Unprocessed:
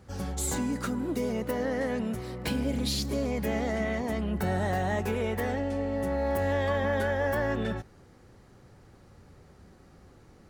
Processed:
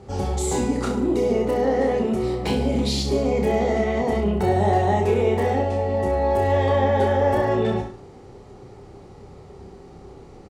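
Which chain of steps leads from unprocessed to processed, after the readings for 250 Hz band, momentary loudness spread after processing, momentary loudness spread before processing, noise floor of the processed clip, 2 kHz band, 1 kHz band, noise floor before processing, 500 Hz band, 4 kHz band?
+6.5 dB, 4 LU, 4 LU, −44 dBFS, +2.0 dB, +11.0 dB, −56 dBFS, +10.0 dB, +5.0 dB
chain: thirty-one-band graphic EQ 400 Hz +11 dB, 800 Hz +7 dB, 1,600 Hz −9 dB, 8,000 Hz +3 dB
in parallel at +2 dB: brickwall limiter −25 dBFS, peak gain reduction 9.5 dB
on the sum: high-frequency loss of the air 52 metres
reverse bouncing-ball delay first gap 30 ms, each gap 1.1×, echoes 5

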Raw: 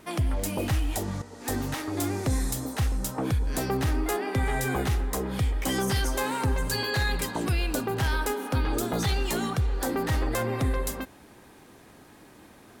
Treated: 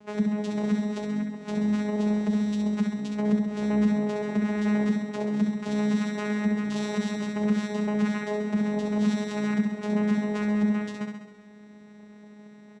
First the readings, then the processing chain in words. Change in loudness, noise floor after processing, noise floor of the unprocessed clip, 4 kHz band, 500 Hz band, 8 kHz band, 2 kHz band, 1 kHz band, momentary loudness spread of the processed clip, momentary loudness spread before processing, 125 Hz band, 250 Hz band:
+1.5 dB, −49 dBFS, −52 dBFS, −8.5 dB, 0.0 dB, −12.5 dB, −4.0 dB, −6.0 dB, 5 LU, 4 LU, −5.0 dB, +8.5 dB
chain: comb filter 6.9 ms, depth 89%
brickwall limiter −17 dBFS, peak gain reduction 4.5 dB
channel vocoder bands 4, saw 209 Hz
on a send: flutter between parallel walls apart 11.4 metres, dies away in 0.9 s

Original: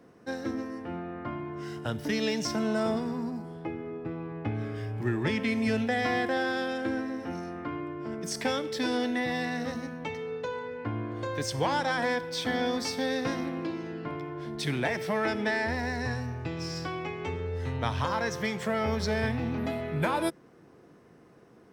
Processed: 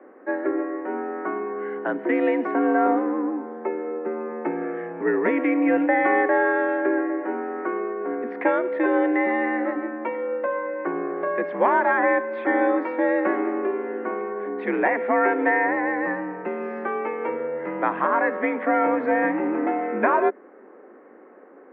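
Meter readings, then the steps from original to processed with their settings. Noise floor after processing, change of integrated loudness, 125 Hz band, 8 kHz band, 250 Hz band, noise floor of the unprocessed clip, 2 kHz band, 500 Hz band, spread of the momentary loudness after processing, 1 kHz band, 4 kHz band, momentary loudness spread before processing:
−48 dBFS, +7.5 dB, below −10 dB, below −35 dB, +7.0 dB, −56 dBFS, +7.5 dB, +9.5 dB, 9 LU, +10.0 dB, below −15 dB, 9 LU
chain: single-sideband voice off tune +62 Hz 200–2,000 Hz
level +9 dB

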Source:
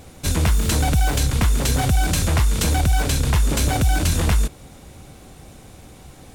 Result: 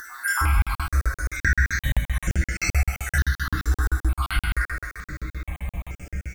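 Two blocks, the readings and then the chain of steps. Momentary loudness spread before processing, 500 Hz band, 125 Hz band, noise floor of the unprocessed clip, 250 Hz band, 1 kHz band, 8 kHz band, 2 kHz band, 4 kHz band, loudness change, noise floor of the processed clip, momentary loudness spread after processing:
2 LU, −14.0 dB, −5.5 dB, −44 dBFS, −11.0 dB, −4.5 dB, −9.0 dB, +4.5 dB, −10.0 dB, −5.5 dB, below −85 dBFS, 12 LU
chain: time-frequency cells dropped at random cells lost 79%
low-shelf EQ 170 Hz +10.5 dB
tuned comb filter 64 Hz, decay 0.18 s, harmonics odd, mix 90%
downward compressor 6 to 1, threshold −35 dBFS, peak gain reduction 23.5 dB
flat-topped bell 1,600 Hz +13.5 dB 1.1 octaves
far-end echo of a speakerphone 320 ms, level −9 dB
bit-depth reduction 12 bits, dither triangular
dense smooth reverb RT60 1.8 s, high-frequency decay 0.85×, DRR −6 dB
upward compression, threshold −39 dBFS
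regular buffer underruns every 0.13 s, samples 2,048, zero, from 0:00.62
boost into a limiter +19.5 dB
step-sequenced phaser 2.2 Hz 640–3,900 Hz
level −8.5 dB

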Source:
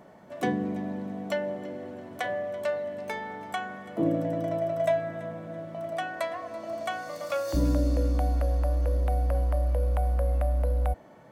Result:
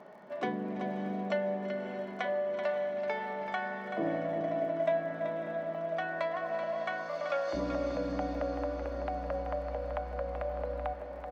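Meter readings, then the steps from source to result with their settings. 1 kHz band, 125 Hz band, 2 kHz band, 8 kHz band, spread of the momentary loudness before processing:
−1.5 dB, −14.5 dB, −1.0 dB, below −10 dB, 10 LU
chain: high-pass filter 580 Hz 6 dB per octave
high-shelf EQ 3,400 Hz −12 dB
comb filter 4.9 ms, depth 33%
in parallel at +2.5 dB: downward compressor, threshold −39 dBFS, peak gain reduction 15.5 dB
on the sum: low-pass filter 5,700 Hz 24 dB per octave
repeating echo 382 ms, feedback 23%, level −8 dB
surface crackle 40 per second −51 dBFS
feedback delay with all-pass diffusion 596 ms, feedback 46%, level −9 dB
level −3.5 dB

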